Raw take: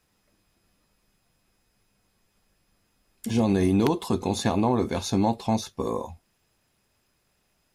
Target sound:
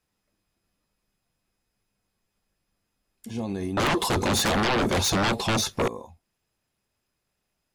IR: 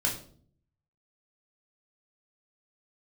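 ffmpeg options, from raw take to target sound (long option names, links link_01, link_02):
-filter_complex "[0:a]asettb=1/sr,asplit=3[link_01][link_02][link_03];[link_01]atrim=end=3.774[link_04];[link_02]atrim=start=3.77:end=5.88,asetpts=PTS-STARTPTS,afade=type=in:duration=0.004:curve=qsin,afade=type=out:start_time=2.106:duration=0.004:curve=qsin,aeval=exprs='0.282*sin(PI/2*6.31*val(0)/0.282)':channel_layout=same[link_05];[link_03]atrim=start=5.876[link_06];[link_04][link_05]acrossfade=duration=0.004:curve1=hsin:curve2=qsin[link_07];[link_07][link_06]acrossfade=duration=0.004:curve1=qsin:curve2=hsin,volume=-8.5dB"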